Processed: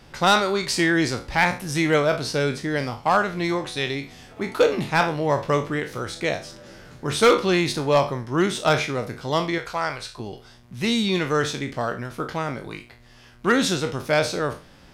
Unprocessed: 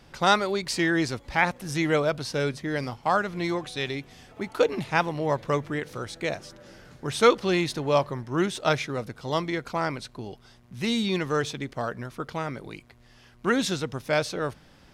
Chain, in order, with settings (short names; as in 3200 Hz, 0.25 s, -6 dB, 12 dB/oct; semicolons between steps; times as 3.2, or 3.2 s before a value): spectral trails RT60 0.33 s; 9.58–10.2 bell 240 Hz -14.5 dB 1.4 oct; hard clip -13.5 dBFS, distortion -17 dB; gain +3.5 dB